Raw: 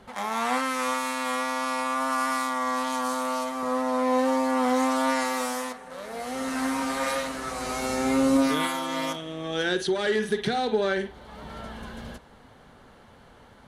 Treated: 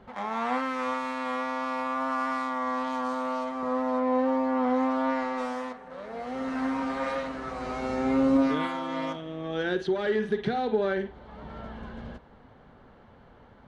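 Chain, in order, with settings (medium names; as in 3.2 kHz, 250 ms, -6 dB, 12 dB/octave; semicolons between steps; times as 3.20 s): tape spacing loss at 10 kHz 25 dB, from 3.98 s at 10 kHz 36 dB, from 5.37 s at 10 kHz 27 dB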